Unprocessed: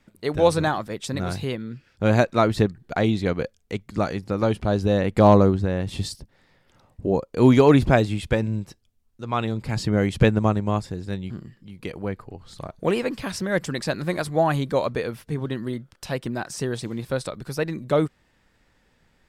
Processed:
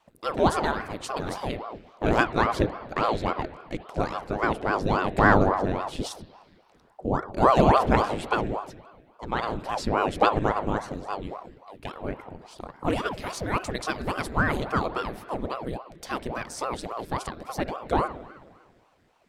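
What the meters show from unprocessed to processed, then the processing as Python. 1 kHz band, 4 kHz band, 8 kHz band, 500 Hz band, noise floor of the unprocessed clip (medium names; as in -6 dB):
+3.0 dB, -3.0 dB, -3.5 dB, -5.0 dB, -64 dBFS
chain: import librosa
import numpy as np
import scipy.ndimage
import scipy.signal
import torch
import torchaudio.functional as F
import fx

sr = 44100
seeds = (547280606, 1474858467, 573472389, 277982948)

y = fx.rev_spring(x, sr, rt60_s=1.7, pass_ms=(52, 59), chirp_ms=40, drr_db=12.5)
y = fx.ring_lfo(y, sr, carrier_hz=510.0, swing_pct=85, hz=3.6)
y = F.gain(torch.from_numpy(y), -1.0).numpy()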